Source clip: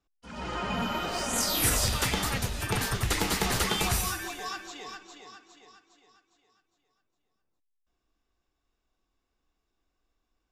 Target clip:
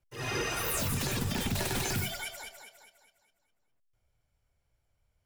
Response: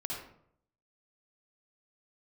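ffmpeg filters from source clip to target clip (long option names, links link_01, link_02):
-af "asetrate=88200,aresample=44100,lowshelf=frequency=210:gain=6.5,alimiter=limit=-20dB:level=0:latency=1:release=45,volume=-2dB"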